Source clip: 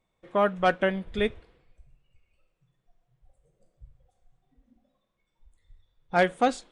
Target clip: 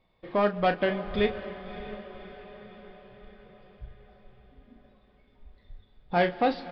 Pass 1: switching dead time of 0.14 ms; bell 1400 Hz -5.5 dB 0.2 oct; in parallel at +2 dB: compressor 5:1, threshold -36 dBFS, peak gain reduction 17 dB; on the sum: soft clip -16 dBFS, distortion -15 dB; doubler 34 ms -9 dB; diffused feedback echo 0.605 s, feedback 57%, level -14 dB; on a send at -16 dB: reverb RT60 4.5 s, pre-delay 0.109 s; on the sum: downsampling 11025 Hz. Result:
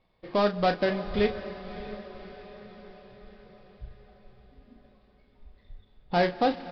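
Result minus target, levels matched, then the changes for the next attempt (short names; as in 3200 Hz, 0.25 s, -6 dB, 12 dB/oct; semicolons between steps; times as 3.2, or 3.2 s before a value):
switching dead time: distortion +12 dB; compressor: peak gain reduction -6 dB
change: switching dead time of 0.051 ms; change: compressor 5:1, threshold -43.5 dBFS, peak gain reduction 23 dB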